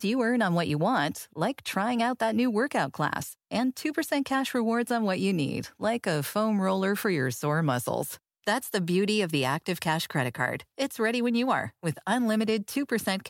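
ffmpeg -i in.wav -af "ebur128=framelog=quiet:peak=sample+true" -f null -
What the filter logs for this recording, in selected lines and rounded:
Integrated loudness:
  I:         -27.8 LUFS
  Threshold: -37.7 LUFS
Loudness range:
  LRA:         1.0 LU
  Threshold: -47.9 LUFS
  LRA low:   -28.4 LUFS
  LRA high:  -27.4 LUFS
Sample peak:
  Peak:      -11.7 dBFS
True peak:
  Peak:      -11.6 dBFS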